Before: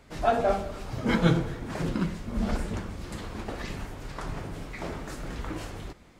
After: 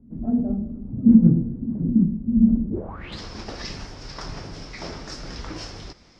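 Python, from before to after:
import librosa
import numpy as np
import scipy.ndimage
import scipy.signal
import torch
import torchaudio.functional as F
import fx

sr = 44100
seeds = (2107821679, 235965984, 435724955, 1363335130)

y = fx.filter_sweep_lowpass(x, sr, from_hz=230.0, to_hz=5300.0, start_s=2.68, end_s=3.19, q=7.6)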